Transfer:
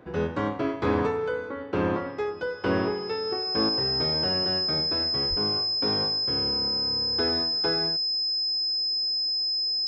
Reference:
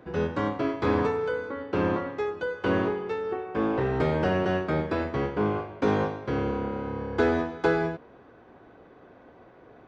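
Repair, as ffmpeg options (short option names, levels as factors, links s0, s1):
-filter_complex "[0:a]bandreject=f=5100:w=30,asplit=3[s0][s1][s2];[s0]afade=t=out:st=5.29:d=0.02[s3];[s1]highpass=f=140:w=0.5412,highpass=f=140:w=1.3066,afade=t=in:st=5.29:d=0.02,afade=t=out:st=5.41:d=0.02[s4];[s2]afade=t=in:st=5.41:d=0.02[s5];[s3][s4][s5]amix=inputs=3:normalize=0,asetnsamples=n=441:p=0,asendcmd='3.69 volume volume 6dB',volume=1"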